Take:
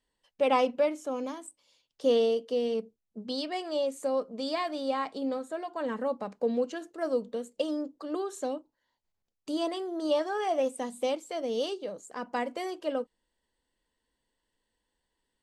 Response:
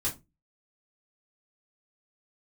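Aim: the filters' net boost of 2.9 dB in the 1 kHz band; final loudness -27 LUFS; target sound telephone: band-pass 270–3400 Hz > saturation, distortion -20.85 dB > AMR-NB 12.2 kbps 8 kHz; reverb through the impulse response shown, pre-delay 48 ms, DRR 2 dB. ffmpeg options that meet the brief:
-filter_complex "[0:a]equalizer=f=1000:t=o:g=4,asplit=2[s0][s1];[1:a]atrim=start_sample=2205,adelay=48[s2];[s1][s2]afir=irnorm=-1:irlink=0,volume=0.473[s3];[s0][s3]amix=inputs=2:normalize=0,highpass=270,lowpass=3400,asoftclip=threshold=0.2,volume=1.33" -ar 8000 -c:a libopencore_amrnb -b:a 12200

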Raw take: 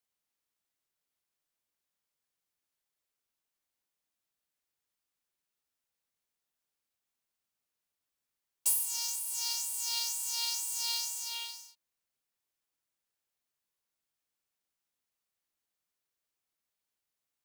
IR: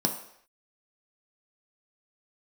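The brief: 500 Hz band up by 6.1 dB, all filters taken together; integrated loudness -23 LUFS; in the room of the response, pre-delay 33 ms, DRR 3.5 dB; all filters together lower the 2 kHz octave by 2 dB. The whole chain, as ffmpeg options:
-filter_complex "[0:a]equalizer=f=500:t=o:g=6.5,equalizer=f=2000:t=o:g=-3.5,asplit=2[s0][s1];[1:a]atrim=start_sample=2205,adelay=33[s2];[s1][s2]afir=irnorm=-1:irlink=0,volume=0.266[s3];[s0][s3]amix=inputs=2:normalize=0,volume=2.37"

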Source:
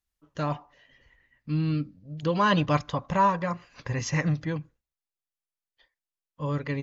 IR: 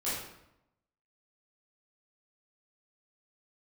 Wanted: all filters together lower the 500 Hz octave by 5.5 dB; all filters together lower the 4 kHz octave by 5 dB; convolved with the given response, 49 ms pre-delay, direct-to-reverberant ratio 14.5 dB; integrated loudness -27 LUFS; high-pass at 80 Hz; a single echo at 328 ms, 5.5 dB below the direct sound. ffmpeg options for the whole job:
-filter_complex "[0:a]highpass=80,equalizer=f=500:t=o:g=-6.5,equalizer=f=4000:t=o:g=-7.5,aecho=1:1:328:0.531,asplit=2[s0][s1];[1:a]atrim=start_sample=2205,adelay=49[s2];[s1][s2]afir=irnorm=-1:irlink=0,volume=0.0944[s3];[s0][s3]amix=inputs=2:normalize=0,volume=1.26"

